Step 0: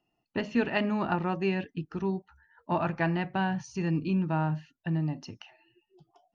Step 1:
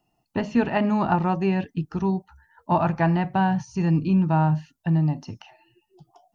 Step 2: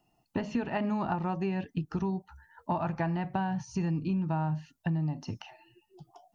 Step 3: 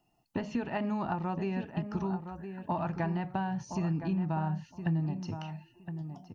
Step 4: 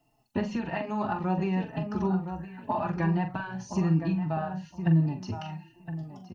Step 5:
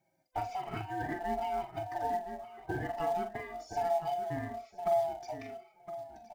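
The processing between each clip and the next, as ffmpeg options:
ffmpeg -i in.wav -filter_complex "[0:a]bass=frequency=250:gain=10,treble=frequency=4000:gain=11,acrossover=split=2600[link_01][link_02];[link_02]acompressor=threshold=-45dB:ratio=4:attack=1:release=60[link_03];[link_01][link_03]amix=inputs=2:normalize=0,equalizer=frequency=840:width_type=o:width=1.2:gain=9" out.wav
ffmpeg -i in.wav -af "acompressor=threshold=-28dB:ratio=6" out.wav
ffmpeg -i in.wav -filter_complex "[0:a]asplit=2[link_01][link_02];[link_02]adelay=1016,lowpass=frequency=2000:poles=1,volume=-8.5dB,asplit=2[link_03][link_04];[link_04]adelay=1016,lowpass=frequency=2000:poles=1,volume=0.17,asplit=2[link_05][link_06];[link_06]adelay=1016,lowpass=frequency=2000:poles=1,volume=0.17[link_07];[link_01][link_03][link_05][link_07]amix=inputs=4:normalize=0,volume=-2dB" out.wav
ffmpeg -i in.wav -filter_complex "[0:a]asplit=2[link_01][link_02];[link_02]adelay=43,volume=-9dB[link_03];[link_01][link_03]amix=inputs=2:normalize=0,asplit=2[link_04][link_05];[link_05]adelay=4,afreqshift=-1.2[link_06];[link_04][link_06]amix=inputs=2:normalize=1,volume=6.5dB" out.wav
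ffmpeg -i in.wav -filter_complex "[0:a]afftfilt=real='real(if(lt(b,1008),b+24*(1-2*mod(floor(b/24),2)),b),0)':imag='imag(if(lt(b,1008),b+24*(1-2*mod(floor(b/24),2)),b),0)':win_size=2048:overlap=0.75,asplit=2[link_01][link_02];[link_02]acrusher=bits=2:mode=log:mix=0:aa=0.000001,volume=-12dB[link_03];[link_01][link_03]amix=inputs=2:normalize=0,volume=-8.5dB" out.wav

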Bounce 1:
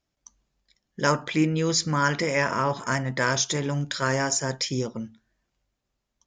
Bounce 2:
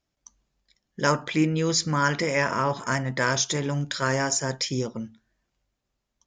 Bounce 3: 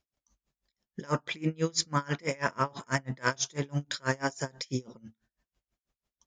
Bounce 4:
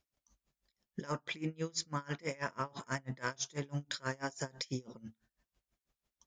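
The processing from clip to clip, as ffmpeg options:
ffmpeg -i in.wav -af anull out.wav
ffmpeg -i in.wav -af "aeval=exprs='val(0)*pow(10,-30*(0.5-0.5*cos(2*PI*6.1*n/s))/20)':channel_layout=same" out.wav
ffmpeg -i in.wav -af "acompressor=threshold=-35dB:ratio=4" out.wav

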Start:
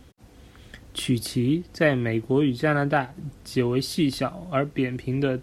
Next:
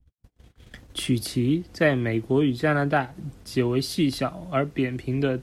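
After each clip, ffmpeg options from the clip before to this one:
ffmpeg -i in.wav -filter_complex "[0:a]agate=range=-41dB:threshold=-46dB:ratio=16:detection=peak,acrossover=split=130|1000|1800[link_01][link_02][link_03][link_04];[link_01]acompressor=mode=upward:threshold=-45dB:ratio=2.5[link_05];[link_05][link_02][link_03][link_04]amix=inputs=4:normalize=0" out.wav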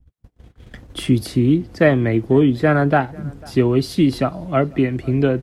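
ffmpeg -i in.wav -filter_complex "[0:a]highshelf=frequency=2100:gain=-9,asplit=2[link_01][link_02];[link_02]adelay=495.6,volume=-24dB,highshelf=frequency=4000:gain=-11.2[link_03];[link_01][link_03]amix=inputs=2:normalize=0,volume=7.5dB" out.wav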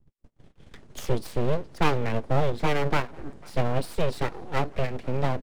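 ffmpeg -i in.wav -af "aresample=22050,aresample=44100,aeval=exprs='abs(val(0))':channel_layout=same,volume=-6.5dB" out.wav

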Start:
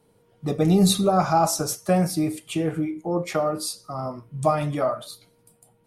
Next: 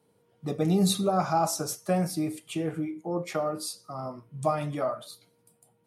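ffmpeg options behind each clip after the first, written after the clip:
ffmpeg -i in.wav -af "highpass=100,volume=-5.5dB" out.wav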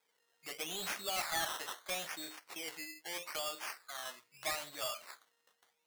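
ffmpeg -i in.wav -filter_complex "[0:a]acrusher=samples=15:mix=1:aa=0.000001:lfo=1:lforange=9:lforate=0.78,aderivative,asplit=2[link_01][link_02];[link_02]highpass=frequency=720:poles=1,volume=14dB,asoftclip=type=tanh:threshold=-9.5dB[link_03];[link_01][link_03]amix=inputs=2:normalize=0,lowpass=frequency=1500:poles=1,volume=-6dB,volume=3dB" out.wav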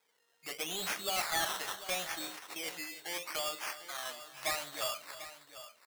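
ffmpeg -i in.wav -af "aecho=1:1:311|743:0.178|0.211,volume=3dB" out.wav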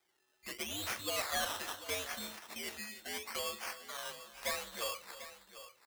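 ffmpeg -i in.wav -af "afreqshift=-96,volume=-2.5dB" out.wav

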